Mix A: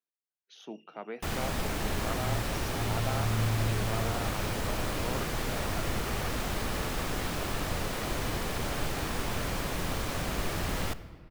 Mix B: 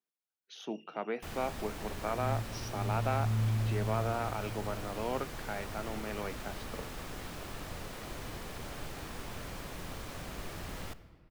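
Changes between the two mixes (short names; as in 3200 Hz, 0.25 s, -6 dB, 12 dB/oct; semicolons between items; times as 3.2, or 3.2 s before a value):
speech +4.0 dB; first sound -10.0 dB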